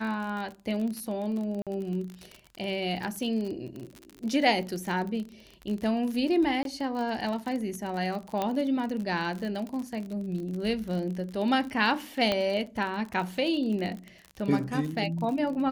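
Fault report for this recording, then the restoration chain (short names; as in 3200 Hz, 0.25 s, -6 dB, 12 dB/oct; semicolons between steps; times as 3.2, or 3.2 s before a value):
crackle 42/s -33 dBFS
1.62–1.67 gap 47 ms
6.63–6.65 gap 22 ms
8.42 pop -15 dBFS
12.32 pop -13 dBFS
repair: de-click; interpolate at 1.62, 47 ms; interpolate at 6.63, 22 ms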